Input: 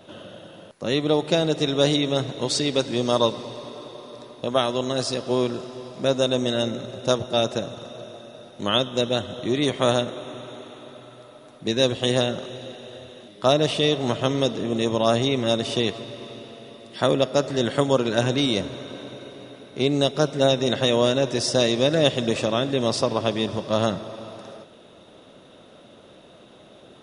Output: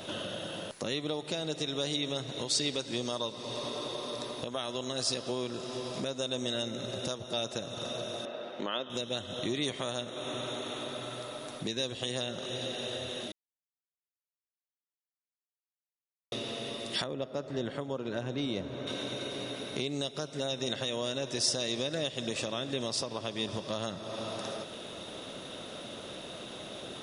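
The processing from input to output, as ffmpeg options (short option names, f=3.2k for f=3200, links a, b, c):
-filter_complex "[0:a]asettb=1/sr,asplit=3[a][b][c];[a]atrim=end=8.254[d];[b]atrim=start=8.25:end=8.9,asetpts=PTS-STARTPTS,afade=t=in:d=0.004:c=qsin,afade=t=out:st=0.646:d=0.004:c=qsin,highpass=290,lowpass=2.4k[e];[c]atrim=start=8.896[f];[d][e]acrossfade=d=0.004:c1=hsin:c2=qsin[g];[g][f]acrossfade=d=0.004:c1=qsin:c2=hsin,asettb=1/sr,asplit=3[h][i][j];[h]atrim=end=17.044[k];[i]atrim=start=17.04:end=18.87,asetpts=PTS-STARTPTS,afade=t=in:d=0.004:c=qsin,afade=t=out:st=1.826:d=0.004:c=qsin,lowpass=f=1.1k:p=1[l];[j]atrim=start=18.866[m];[k][l]acrossfade=d=0.004:c1=hsin:c2=qsin[n];[n][m]acrossfade=d=0.004:c1=qsin:c2=hsin,asplit=3[o][p][q];[o]atrim=end=13.32,asetpts=PTS-STARTPTS,afade=t=out:st=13.316:d=0.004:c=hsin[r];[p]atrim=start=13.32:end=16.32,asetpts=PTS-STARTPTS,volume=0[s];[q]atrim=start=16.32,asetpts=PTS-STARTPTS,afade=t=in:d=0.004:c=hsin[t];[r][s][t]concat=n=3:v=0:a=1,acompressor=threshold=-40dB:ratio=3,alimiter=level_in=3dB:limit=-24dB:level=0:latency=1:release=218,volume=-3dB,highshelf=f=2.3k:g=9,volume=4dB"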